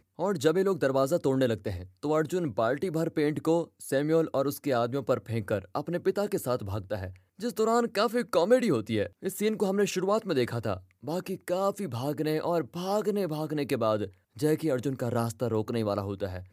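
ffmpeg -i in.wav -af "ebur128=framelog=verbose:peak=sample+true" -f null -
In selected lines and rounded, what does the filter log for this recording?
Integrated loudness:
  I:         -29.0 LUFS
  Threshold: -39.1 LUFS
Loudness range:
  LRA:         2.8 LU
  Threshold: -49.1 LUFS
  LRA low:   -30.5 LUFS
  LRA high:  -27.7 LUFS
Sample peak:
  Peak:      -11.0 dBFS
True peak:
  Peak:      -11.0 dBFS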